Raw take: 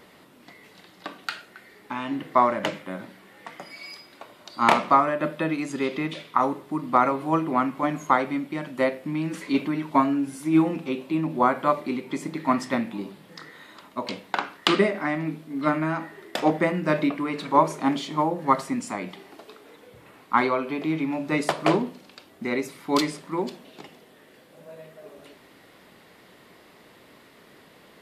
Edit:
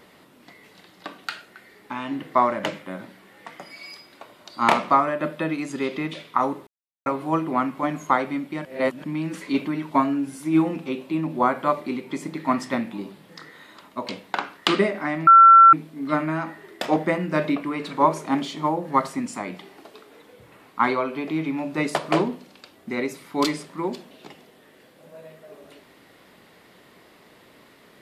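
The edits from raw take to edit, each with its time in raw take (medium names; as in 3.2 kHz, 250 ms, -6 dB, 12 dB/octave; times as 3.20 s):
6.67–7.06 s: mute
8.65–9.04 s: reverse
15.27 s: add tone 1.35 kHz -6.5 dBFS 0.46 s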